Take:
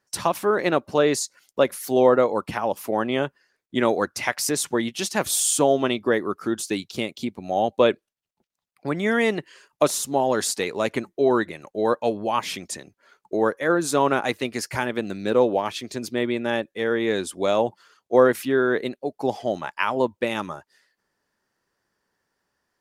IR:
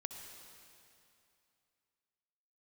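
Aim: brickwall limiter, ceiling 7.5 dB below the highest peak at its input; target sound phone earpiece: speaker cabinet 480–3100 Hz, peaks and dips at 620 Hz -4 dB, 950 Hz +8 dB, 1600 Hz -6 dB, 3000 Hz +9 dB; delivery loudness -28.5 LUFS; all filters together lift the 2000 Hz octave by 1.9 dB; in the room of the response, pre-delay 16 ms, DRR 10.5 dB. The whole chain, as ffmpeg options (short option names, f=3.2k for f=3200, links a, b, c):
-filter_complex "[0:a]equalizer=f=2k:t=o:g=4.5,alimiter=limit=-10.5dB:level=0:latency=1,asplit=2[a][b];[1:a]atrim=start_sample=2205,adelay=16[c];[b][c]afir=irnorm=-1:irlink=0,volume=-8.5dB[d];[a][d]amix=inputs=2:normalize=0,highpass=480,equalizer=f=620:t=q:w=4:g=-4,equalizer=f=950:t=q:w=4:g=8,equalizer=f=1.6k:t=q:w=4:g=-6,equalizer=f=3k:t=q:w=4:g=9,lowpass=f=3.1k:w=0.5412,lowpass=f=3.1k:w=1.3066,volume=-2dB"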